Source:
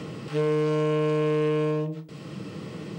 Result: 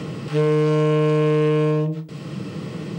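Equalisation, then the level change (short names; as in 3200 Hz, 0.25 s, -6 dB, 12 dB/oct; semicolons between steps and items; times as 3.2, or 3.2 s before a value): bell 150 Hz +3.5 dB; +5.0 dB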